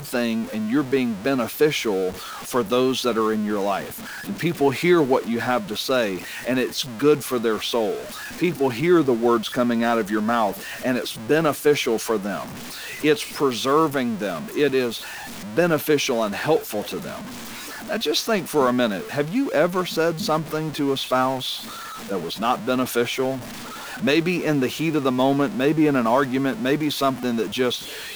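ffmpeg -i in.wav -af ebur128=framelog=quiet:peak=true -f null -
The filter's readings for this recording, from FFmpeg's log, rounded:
Integrated loudness:
  I:         -22.2 LUFS
  Threshold: -32.5 LUFS
Loudness range:
  LRA:         2.7 LU
  Threshold: -42.5 LUFS
  LRA low:   -23.8 LUFS
  LRA high:  -21.1 LUFS
True peak:
  Peak:       -6.9 dBFS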